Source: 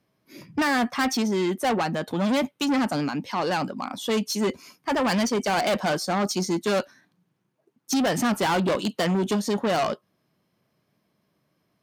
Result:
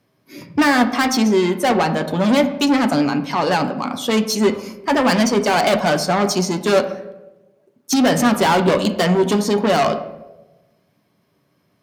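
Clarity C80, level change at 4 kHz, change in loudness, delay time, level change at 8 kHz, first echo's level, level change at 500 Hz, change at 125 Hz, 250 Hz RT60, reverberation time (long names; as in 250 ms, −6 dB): 13.5 dB, +7.0 dB, +7.5 dB, no echo audible, +6.5 dB, no echo audible, +8.5 dB, +7.0 dB, 1.1 s, 1.1 s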